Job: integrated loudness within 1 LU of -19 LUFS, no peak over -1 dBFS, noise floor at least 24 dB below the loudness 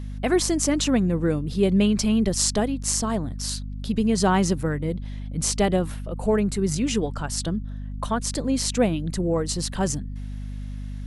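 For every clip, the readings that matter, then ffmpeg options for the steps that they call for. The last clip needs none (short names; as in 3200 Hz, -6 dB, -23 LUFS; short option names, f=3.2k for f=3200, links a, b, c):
hum 50 Hz; harmonics up to 250 Hz; hum level -30 dBFS; loudness -24.0 LUFS; peak -4.0 dBFS; loudness target -19.0 LUFS
-> -af "bandreject=f=50:t=h:w=4,bandreject=f=100:t=h:w=4,bandreject=f=150:t=h:w=4,bandreject=f=200:t=h:w=4,bandreject=f=250:t=h:w=4"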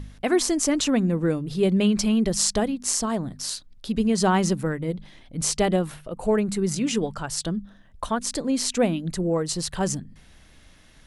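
hum none; loudness -24.5 LUFS; peak -4.5 dBFS; loudness target -19.0 LUFS
-> -af "volume=5.5dB,alimiter=limit=-1dB:level=0:latency=1"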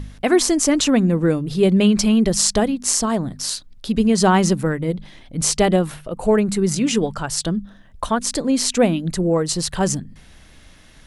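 loudness -19.0 LUFS; peak -1.0 dBFS; noise floor -47 dBFS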